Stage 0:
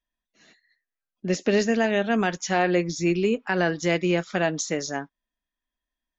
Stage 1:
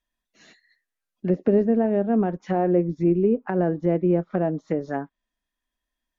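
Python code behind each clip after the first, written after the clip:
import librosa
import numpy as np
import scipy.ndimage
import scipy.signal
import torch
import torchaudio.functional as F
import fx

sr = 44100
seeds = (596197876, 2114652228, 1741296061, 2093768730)

y = fx.env_lowpass_down(x, sr, base_hz=580.0, full_db=-23.0)
y = y * 10.0 ** (3.5 / 20.0)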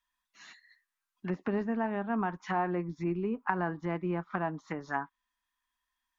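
y = fx.low_shelf_res(x, sr, hz=740.0, db=-10.0, q=3.0)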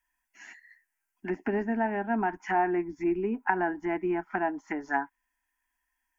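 y = fx.fixed_phaser(x, sr, hz=780.0, stages=8)
y = y * 10.0 ** (6.5 / 20.0)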